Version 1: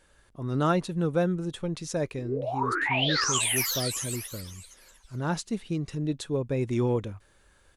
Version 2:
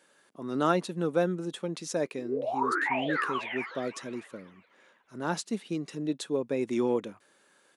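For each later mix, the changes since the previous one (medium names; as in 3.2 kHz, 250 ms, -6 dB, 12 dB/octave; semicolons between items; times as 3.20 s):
background: add low-pass 2.1 kHz 24 dB/octave; master: add high-pass 200 Hz 24 dB/octave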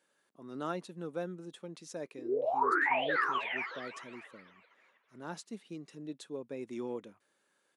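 speech -11.5 dB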